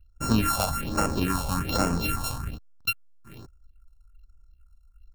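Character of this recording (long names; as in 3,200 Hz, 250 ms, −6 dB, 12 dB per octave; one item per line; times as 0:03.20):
a buzz of ramps at a fixed pitch in blocks of 32 samples
phaser sweep stages 4, 1.2 Hz, lowest notch 310–3,600 Hz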